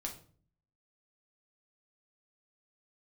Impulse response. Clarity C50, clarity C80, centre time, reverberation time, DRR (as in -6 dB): 10.0 dB, 15.0 dB, 17 ms, 0.45 s, 0.0 dB